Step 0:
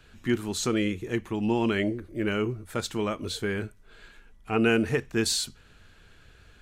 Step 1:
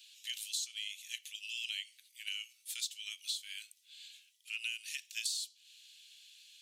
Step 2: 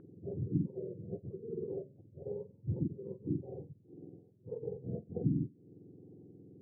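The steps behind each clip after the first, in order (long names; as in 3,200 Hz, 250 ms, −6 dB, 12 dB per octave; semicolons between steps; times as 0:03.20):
Butterworth high-pass 2,900 Hz 36 dB per octave; downward compressor 8 to 1, threshold −43 dBFS, peak gain reduction 18 dB; level +7.5 dB
frequency axis turned over on the octave scale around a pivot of 1,100 Hz; auto-filter low-pass sine 1.1 Hz 950–2,400 Hz; level −3.5 dB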